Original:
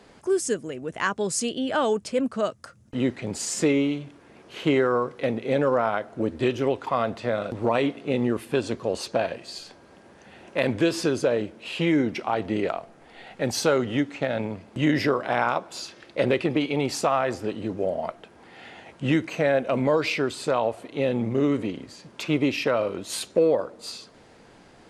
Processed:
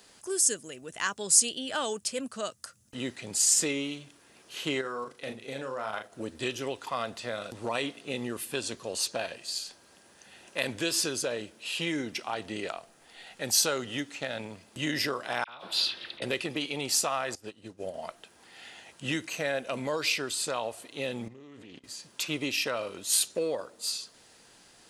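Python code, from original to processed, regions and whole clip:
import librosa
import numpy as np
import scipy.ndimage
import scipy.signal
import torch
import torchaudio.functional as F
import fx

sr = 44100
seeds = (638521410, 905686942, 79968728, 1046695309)

y = fx.chain(x, sr, fx.level_steps(step_db=9),
    fx.doubler(ms=37.0, db=-6.5), at=(4.81, 6.12))
y = fx.chain(y, sr, fx.high_shelf_res(hz=5000.0, db=-10.0, q=3.0),
    fx.over_compress(threshold_db=-35.0, ratio=-1.0),
    fx.dispersion(late='lows', ms=44.0, hz=1700.0), at=(15.44, 16.22))
y = fx.chain(y, sr, fx.low_shelf(hz=77.0, db=9.0),
    fx.upward_expand(threshold_db=-35.0, expansion=2.5), at=(17.35, 17.94))
y = fx.chain(y, sr, fx.level_steps(step_db=19),
    fx.air_absorb(metres=81.0),
    fx.doppler_dist(depth_ms=0.17), at=(21.28, 21.84))
y = librosa.effects.preemphasis(y, coef=0.9, zi=[0.0])
y = fx.notch(y, sr, hz=2200.0, q=15.0)
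y = y * 10.0 ** (8.0 / 20.0)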